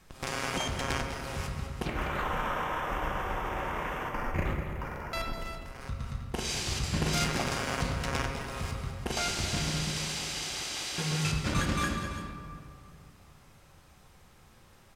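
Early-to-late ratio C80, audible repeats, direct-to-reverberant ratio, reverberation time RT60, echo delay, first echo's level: 4.0 dB, 2, 1.0 dB, 2.3 s, 200 ms, -10.5 dB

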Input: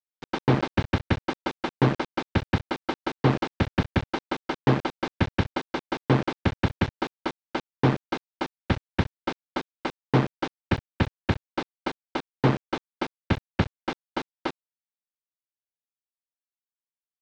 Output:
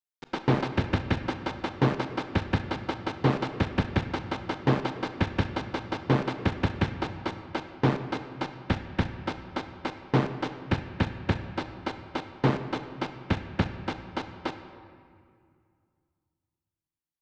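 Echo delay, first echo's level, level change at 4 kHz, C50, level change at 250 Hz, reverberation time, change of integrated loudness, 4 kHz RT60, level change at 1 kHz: no echo, no echo, -2.0 dB, 9.5 dB, -2.0 dB, 2.2 s, -2.0 dB, 1.4 s, -1.5 dB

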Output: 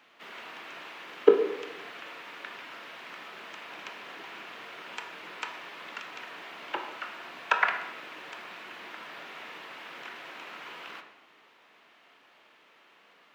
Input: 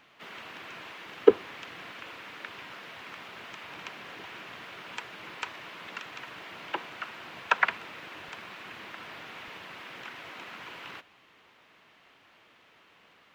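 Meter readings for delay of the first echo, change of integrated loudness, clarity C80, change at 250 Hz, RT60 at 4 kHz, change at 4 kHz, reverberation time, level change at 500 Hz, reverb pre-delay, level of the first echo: no echo, +0.5 dB, 10.0 dB, -1.0 dB, 0.70 s, -0.5 dB, 0.85 s, +1.0 dB, 19 ms, no echo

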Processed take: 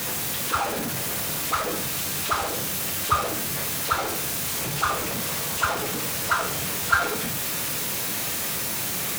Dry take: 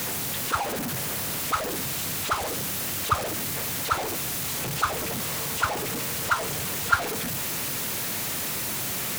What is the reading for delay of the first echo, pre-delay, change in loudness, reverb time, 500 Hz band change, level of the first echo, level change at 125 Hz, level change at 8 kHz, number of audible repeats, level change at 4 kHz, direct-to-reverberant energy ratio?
no echo, 5 ms, +2.0 dB, 0.55 s, +2.0 dB, no echo, +0.5 dB, +2.0 dB, no echo, +2.0 dB, 2.5 dB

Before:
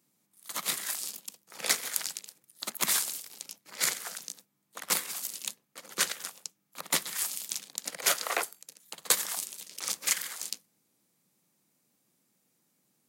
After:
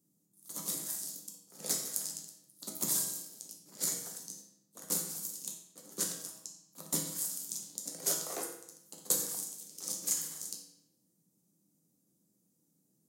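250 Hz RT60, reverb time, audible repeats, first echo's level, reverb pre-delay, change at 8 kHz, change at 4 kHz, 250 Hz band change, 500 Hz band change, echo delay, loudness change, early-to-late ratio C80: 0.80 s, 0.80 s, no echo, no echo, 6 ms, -2.5 dB, -9.5 dB, +3.0 dB, -4.0 dB, no echo, -4.0 dB, 8.0 dB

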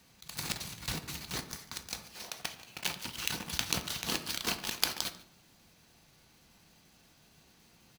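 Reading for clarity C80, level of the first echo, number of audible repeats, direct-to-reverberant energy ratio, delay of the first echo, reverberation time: 15.0 dB, -21.0 dB, 1, 7.5 dB, 144 ms, 0.65 s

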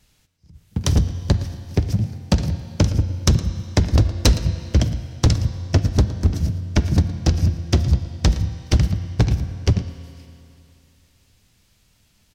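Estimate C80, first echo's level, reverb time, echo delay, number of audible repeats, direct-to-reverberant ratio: 11.0 dB, -16.5 dB, 2.8 s, 114 ms, 1, 10.0 dB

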